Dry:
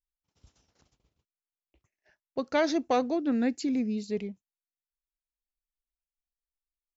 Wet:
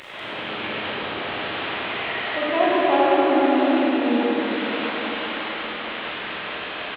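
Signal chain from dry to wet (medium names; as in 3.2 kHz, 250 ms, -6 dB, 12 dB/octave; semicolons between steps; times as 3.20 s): one-bit delta coder 16 kbps, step -29 dBFS; high-pass 220 Hz 12 dB/octave; pitch shift +2 st; delay 193 ms -5.5 dB; algorithmic reverb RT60 4.9 s, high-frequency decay 0.75×, pre-delay 0 ms, DRR -8.5 dB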